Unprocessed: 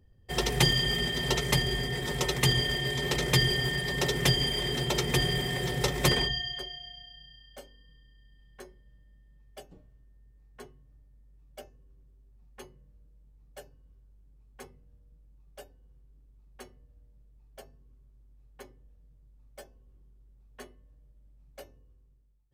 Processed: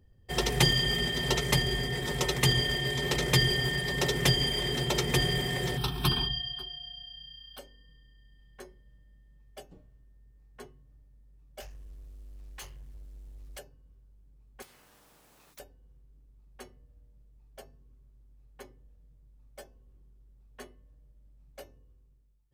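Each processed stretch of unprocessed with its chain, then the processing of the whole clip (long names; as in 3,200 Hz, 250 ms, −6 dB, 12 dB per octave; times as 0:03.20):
0:05.77–0:07.59: phaser with its sweep stopped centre 2,000 Hz, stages 6 + one half of a high-frequency compander encoder only
0:11.60–0:13.59: guitar amp tone stack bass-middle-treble 10-0-10 + leveller curve on the samples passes 5 + highs frequency-modulated by the lows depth 0.21 ms
0:14.62–0:15.60: leveller curve on the samples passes 1 + every bin compressed towards the loudest bin 10 to 1
whole clip: no processing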